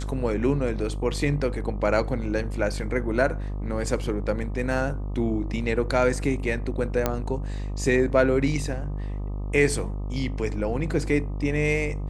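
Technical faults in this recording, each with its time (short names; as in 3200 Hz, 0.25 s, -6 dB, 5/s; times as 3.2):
buzz 50 Hz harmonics 25 -30 dBFS
7.06 pop -8 dBFS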